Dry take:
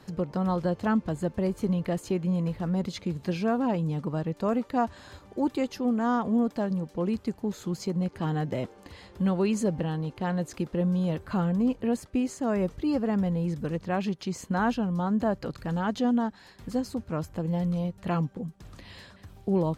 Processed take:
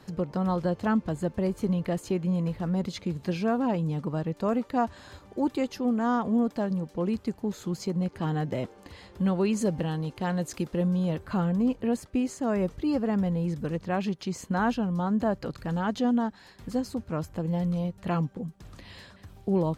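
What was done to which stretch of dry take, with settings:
9.61–10.88 s: treble shelf 3.8 kHz +6.5 dB

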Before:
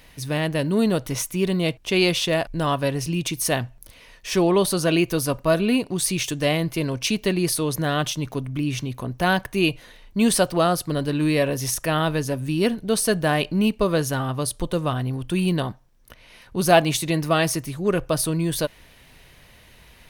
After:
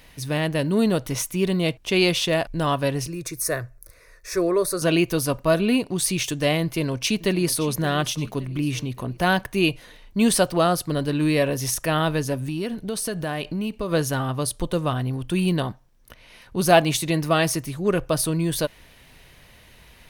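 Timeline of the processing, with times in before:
3.07–4.82 s: static phaser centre 830 Hz, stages 6
6.63–7.69 s: echo throw 570 ms, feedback 45%, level -16.5 dB
12.43–13.92 s: compression 4:1, threshold -24 dBFS

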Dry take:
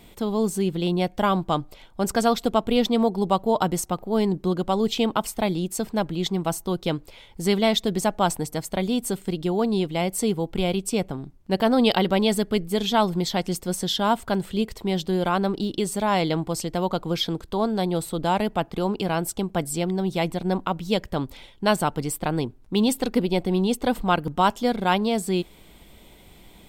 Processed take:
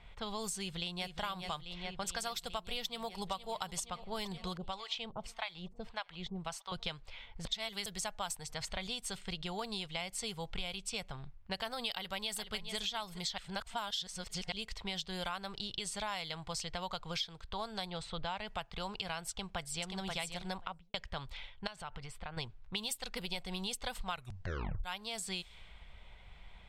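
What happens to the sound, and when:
0.58–1.12 s: echo throw 420 ms, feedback 75%, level -6.5 dB
2.82–3.32 s: echo throw 470 ms, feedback 70%, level -14 dB
4.57–6.72 s: harmonic tremolo 1.7 Hz, depth 100%, crossover 650 Hz
7.45–7.86 s: reverse
8.47–8.87 s: transient shaper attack -2 dB, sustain +7 dB
11.92–12.76 s: echo throw 420 ms, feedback 10%, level -14 dB
13.38–14.52 s: reverse
17.90–18.48 s: distance through air 120 m
19.29–19.92 s: echo throw 530 ms, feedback 10%, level -6 dB
20.48–20.94 s: studio fade out
21.67–22.37 s: compression 8:1, threshold -30 dBFS
24.12 s: tape stop 0.72 s
whole clip: level-controlled noise filter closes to 1.7 kHz, open at -16.5 dBFS; amplifier tone stack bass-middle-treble 10-0-10; compression 6:1, threshold -41 dBFS; trim +5 dB

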